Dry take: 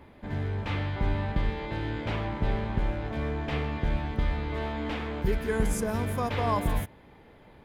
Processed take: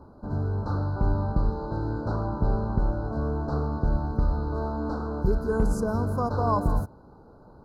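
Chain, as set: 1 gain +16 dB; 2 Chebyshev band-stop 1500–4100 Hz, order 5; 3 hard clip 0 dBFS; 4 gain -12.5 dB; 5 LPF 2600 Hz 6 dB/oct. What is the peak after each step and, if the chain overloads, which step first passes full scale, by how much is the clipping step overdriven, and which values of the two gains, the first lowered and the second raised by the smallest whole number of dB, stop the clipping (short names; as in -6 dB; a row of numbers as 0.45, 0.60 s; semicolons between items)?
+4.0, +3.5, 0.0, -12.5, -12.5 dBFS; step 1, 3.5 dB; step 1 +12 dB, step 4 -8.5 dB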